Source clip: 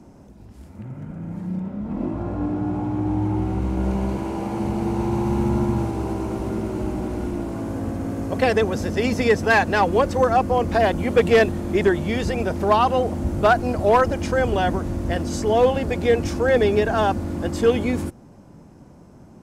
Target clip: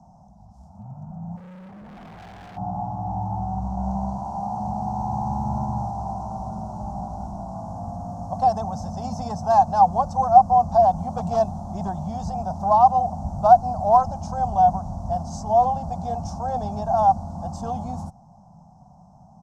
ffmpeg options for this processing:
-filter_complex "[0:a]firequalizer=gain_entry='entry(110,0);entry(180,5);entry(310,-21);entry(450,-19);entry(730,14);entry(1900,-30);entry(3600,-14);entry(5700,1);entry(11000,-15)':delay=0.05:min_phase=1,asplit=3[s0][s1][s2];[s0]afade=t=out:st=1.36:d=0.02[s3];[s1]asoftclip=type=hard:threshold=0.0158,afade=t=in:st=1.36:d=0.02,afade=t=out:st=2.56:d=0.02[s4];[s2]afade=t=in:st=2.56:d=0.02[s5];[s3][s4][s5]amix=inputs=3:normalize=0,volume=0.562"

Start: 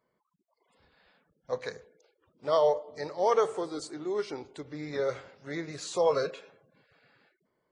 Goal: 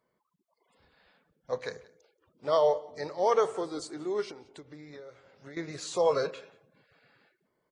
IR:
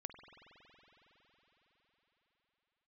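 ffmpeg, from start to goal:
-filter_complex "[0:a]asettb=1/sr,asplit=3[s0][s1][s2];[s0]atrim=end=4.314[s3];[s1]atrim=start=4.31:end=5.57,asetpts=PTS-STARTPTS,afade=t=in:d=0.004:c=qsin,afade=t=out:st=1.256:d=0.004:c=qsin,acompressor=threshold=0.00631:ratio=20[s4];[s2]atrim=start=5.566[s5];[s3][s4]acrossfade=d=0.004:c1=hsin:c2=qsin[s6];[s6][s5]acrossfade=d=0.004:c1=qsin:c2=hsin,asplit=2[s7][s8];[s8]aecho=0:1:179:0.075[s9];[s7][s9]amix=inputs=2:normalize=0"

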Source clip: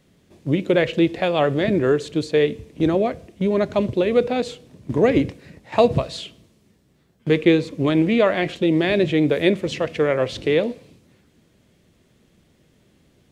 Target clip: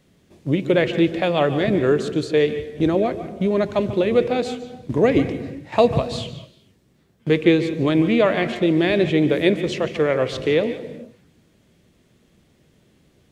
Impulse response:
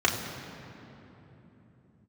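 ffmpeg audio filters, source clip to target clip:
-filter_complex "[0:a]asplit=2[s0][s1];[1:a]atrim=start_sample=2205,afade=t=out:st=0.36:d=0.01,atrim=end_sample=16317,adelay=143[s2];[s1][s2]afir=irnorm=-1:irlink=0,volume=0.0562[s3];[s0][s3]amix=inputs=2:normalize=0"

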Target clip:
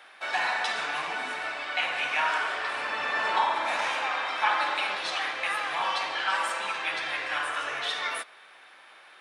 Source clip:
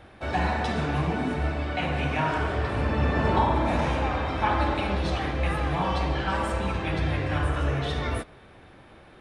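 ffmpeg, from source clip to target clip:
-af "highpass=1200,volume=1.88"

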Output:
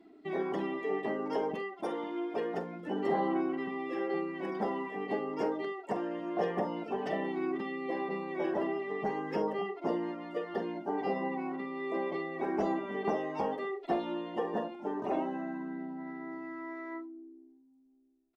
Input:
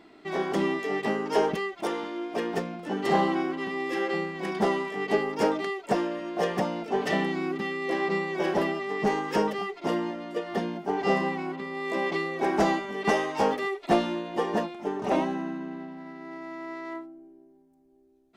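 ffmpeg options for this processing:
-filter_complex "[0:a]acrossover=split=240|930[s0][s1][s2];[s0]acompressor=threshold=0.00562:ratio=4[s3];[s1]acompressor=threshold=0.0447:ratio=4[s4];[s2]acompressor=threshold=0.00794:ratio=4[s5];[s3][s4][s5]amix=inputs=3:normalize=0,aphaser=in_gain=1:out_gain=1:delay=4:decay=0.24:speed=0.31:type=sinusoidal,aecho=1:1:45|72:0.355|0.15,afftdn=nr=13:nf=-45,volume=0.668"

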